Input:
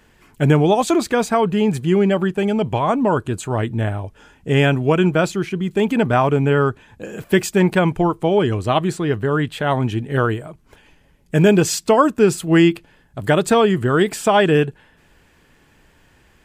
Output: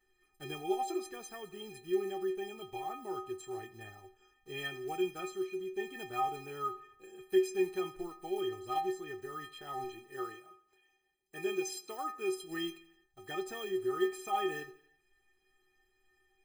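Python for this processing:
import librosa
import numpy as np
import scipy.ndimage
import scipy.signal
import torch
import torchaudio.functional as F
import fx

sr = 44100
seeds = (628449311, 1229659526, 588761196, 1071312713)

y = fx.block_float(x, sr, bits=5)
y = fx.highpass(y, sr, hz=250.0, slope=6, at=(9.84, 12.34))
y = fx.stiff_resonator(y, sr, f0_hz=370.0, decay_s=0.4, stiffness=0.03)
y = fx.echo_feedback(y, sr, ms=84, feedback_pct=55, wet_db=-20)
y = y * librosa.db_to_amplitude(-3.0)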